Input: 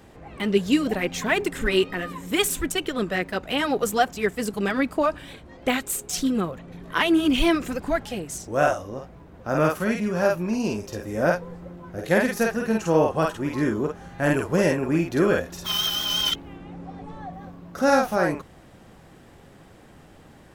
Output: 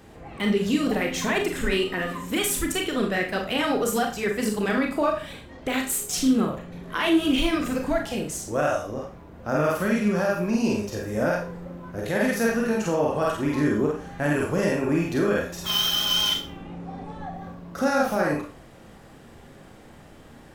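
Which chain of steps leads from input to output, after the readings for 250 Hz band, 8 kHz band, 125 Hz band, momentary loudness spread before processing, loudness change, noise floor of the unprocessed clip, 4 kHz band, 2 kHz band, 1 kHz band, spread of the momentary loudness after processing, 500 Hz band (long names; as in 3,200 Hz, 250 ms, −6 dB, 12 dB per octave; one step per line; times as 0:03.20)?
0.0 dB, +1.0 dB, −0.5 dB, 17 LU, −0.5 dB, −50 dBFS, +1.0 dB, −1.0 dB, −2.0 dB, 15 LU, −1.5 dB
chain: brickwall limiter −16 dBFS, peak gain reduction 8 dB
four-comb reverb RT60 0.35 s, combs from 27 ms, DRR 2 dB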